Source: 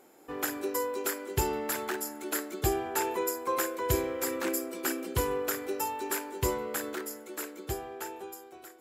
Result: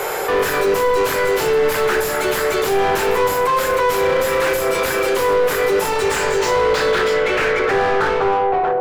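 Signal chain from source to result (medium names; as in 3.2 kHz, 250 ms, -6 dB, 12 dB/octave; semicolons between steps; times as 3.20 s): Chebyshev high-pass 410 Hz, order 5; peaking EQ 710 Hz -8.5 dB 1 oct; in parallel at -1 dB: gain riding within 3 dB; on the sum: wavefolder -26 dBFS; low-pass sweep 13 kHz -> 740 Hz, 5.67–8.73 s; overdrive pedal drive 34 dB, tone 1.1 kHz, clips at -17.5 dBFS; reverberation RT60 0.45 s, pre-delay 7 ms, DRR 5.5 dB; level flattener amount 50%; trim +6.5 dB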